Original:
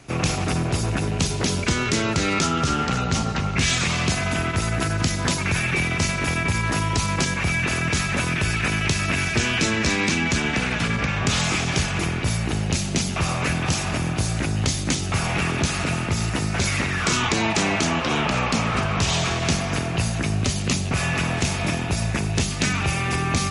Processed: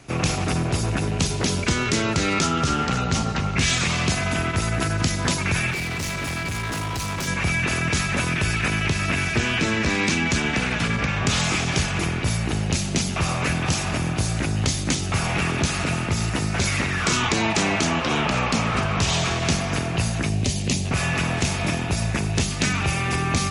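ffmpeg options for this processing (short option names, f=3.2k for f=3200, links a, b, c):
-filter_complex "[0:a]asettb=1/sr,asplit=3[a][b][c];[a]atrim=end=5.724[d];[b]atrim=start=5.72:end=7.28,asetpts=PTS-STARTPTS,afade=t=in:d=0.004:c=qsin,afade=t=out:st=1.556:d=0.004:c=qsin,asoftclip=type=hard:threshold=-25dB[e];[c]atrim=start=7.276[f];[d][e]acrossfade=d=0.004:c1=hsin:c2=qsin[g];[g][f]acrossfade=d=0.004:c1=qsin:c2=hsin,asettb=1/sr,asplit=3[h][i][j];[h]atrim=end=8.684[k];[i]atrim=start=8.68:end=9.95,asetpts=PTS-STARTPTS,afade=t=in:d=0.004:c=qsin,afade=t=out:st=1.266:d=0.004:c=qsin,acrossover=split=3300[l][m];[m]acompressor=threshold=-31dB:ratio=4:attack=1:release=60[n];[l][n]amix=inputs=2:normalize=0[o];[j]atrim=start=9.946[p];[k][o]acrossfade=d=0.004:c1=hsin:c2=qsin[q];[q][p]acrossfade=d=0.004:c1=qsin:c2=hsin,asettb=1/sr,asplit=3[r][s][t];[r]atrim=end=20.294[u];[s]atrim=start=20.29:end=20.85,asetpts=PTS-STARTPTS,afade=t=in:d=0.004:c=qsin,afade=t=out:st=0.556:d=0.004:c=qsin,equalizer=f=1.3k:w=1.7:g=-11[v];[t]atrim=start=20.846[w];[u][v]acrossfade=d=0.004:c1=hsin:c2=qsin[x];[x][w]acrossfade=d=0.004:c1=qsin:c2=hsin"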